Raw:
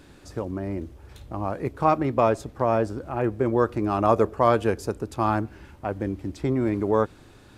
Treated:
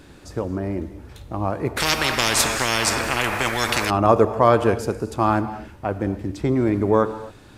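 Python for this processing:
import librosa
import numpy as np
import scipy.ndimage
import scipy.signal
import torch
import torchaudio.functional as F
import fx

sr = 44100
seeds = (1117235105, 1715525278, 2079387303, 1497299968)

y = fx.rev_gated(x, sr, seeds[0], gate_ms=290, shape='flat', drr_db=11.5)
y = fx.spectral_comp(y, sr, ratio=10.0, at=(1.76, 3.89), fade=0.02)
y = F.gain(torch.from_numpy(y), 4.0).numpy()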